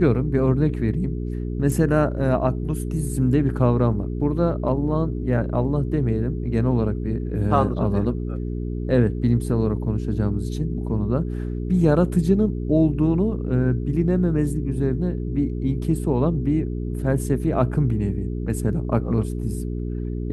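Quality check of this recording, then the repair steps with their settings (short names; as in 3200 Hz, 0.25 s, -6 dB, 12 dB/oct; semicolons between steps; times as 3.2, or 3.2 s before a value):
hum 60 Hz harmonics 7 -27 dBFS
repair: de-hum 60 Hz, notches 7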